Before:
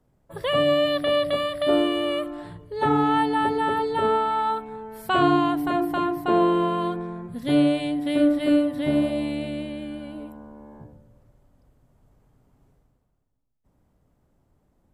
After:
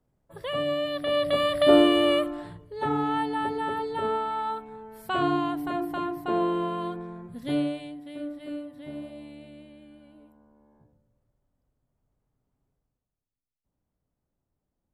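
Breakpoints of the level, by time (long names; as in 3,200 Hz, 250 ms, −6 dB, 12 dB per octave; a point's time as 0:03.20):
0:00.91 −7.5 dB
0:01.55 +3.5 dB
0:02.13 +3.5 dB
0:02.73 −6 dB
0:07.51 −6 dB
0:08.07 −16.5 dB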